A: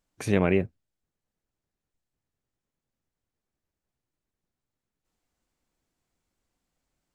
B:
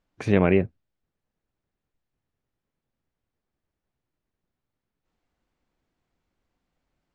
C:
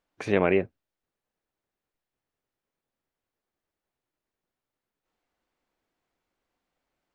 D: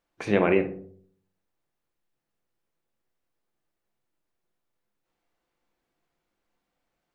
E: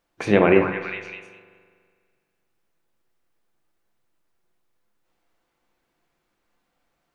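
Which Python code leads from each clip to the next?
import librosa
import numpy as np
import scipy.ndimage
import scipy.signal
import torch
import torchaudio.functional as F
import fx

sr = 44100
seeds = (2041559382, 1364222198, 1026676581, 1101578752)

y1 = scipy.signal.sosfilt(scipy.signal.bessel(2, 3200.0, 'lowpass', norm='mag', fs=sr, output='sos'), x)
y1 = y1 * librosa.db_to_amplitude(3.5)
y2 = fx.bass_treble(y1, sr, bass_db=-11, treble_db=-1)
y3 = fx.echo_filtered(y2, sr, ms=63, feedback_pct=56, hz=1000.0, wet_db=-10)
y3 = fx.room_shoebox(y3, sr, seeds[0], volume_m3=270.0, walls='furnished', distance_m=0.8)
y4 = fx.echo_stepped(y3, sr, ms=202, hz=1200.0, octaves=0.7, feedback_pct=70, wet_db=-3.5)
y4 = fx.rev_spring(y4, sr, rt60_s=1.9, pass_ms=(41,), chirp_ms=40, drr_db=13.0)
y4 = y4 * librosa.db_to_amplitude(5.5)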